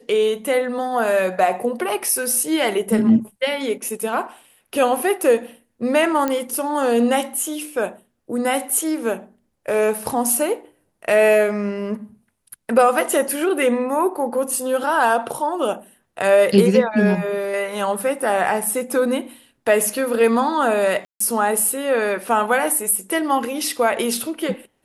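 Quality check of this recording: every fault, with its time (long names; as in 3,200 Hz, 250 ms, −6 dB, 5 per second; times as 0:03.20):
0:06.28: click −8 dBFS
0:21.05–0:21.20: drop-out 154 ms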